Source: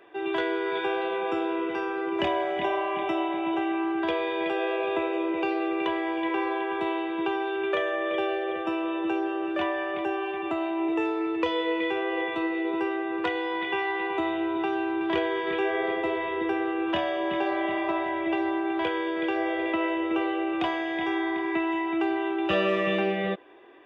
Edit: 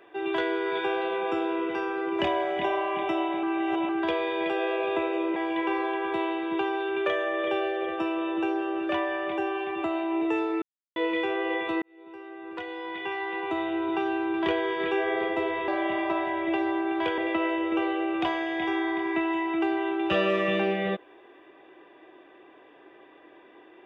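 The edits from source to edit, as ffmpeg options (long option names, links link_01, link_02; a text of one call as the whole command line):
ffmpeg -i in.wav -filter_complex "[0:a]asplit=9[link_01][link_02][link_03][link_04][link_05][link_06][link_07][link_08][link_09];[link_01]atrim=end=3.432[link_10];[link_02]atrim=start=3.428:end=3.892,asetpts=PTS-STARTPTS,areverse[link_11];[link_03]atrim=start=3.888:end=5.362[link_12];[link_04]atrim=start=6.028:end=11.29,asetpts=PTS-STARTPTS,afade=type=out:start_time=5.258:duration=0.004:curve=hsin[link_13];[link_05]atrim=start=11.29:end=11.63,asetpts=PTS-STARTPTS,volume=0[link_14];[link_06]atrim=start=11.63:end=12.49,asetpts=PTS-STARTPTS,afade=type=in:duration=0.004:curve=hsin,afade=type=out:start_time=0.856:duration=0.004:curve=hsin[link_15];[link_07]atrim=start=12.49:end=16.352,asetpts=PTS-STARTPTS,afade=type=in:duration=2.12[link_16];[link_08]atrim=start=17.468:end=18.972[link_17];[link_09]atrim=start=19.568[link_18];[link_10][link_11]acrossfade=duration=0.004:curve1=hsin:curve2=hsin[link_19];[link_19][link_12]acrossfade=duration=0.004:curve1=hsin:curve2=hsin[link_20];[link_13][link_14][link_15][link_16]concat=n=4:v=0:a=1[link_21];[link_20][link_21]acrossfade=duration=0.004:curve1=hsin:curve2=hsin[link_22];[link_22][link_17]acrossfade=duration=0.004:curve1=hsin:curve2=hsin[link_23];[link_23][link_18]acrossfade=duration=0.004:curve1=hsin:curve2=hsin" out.wav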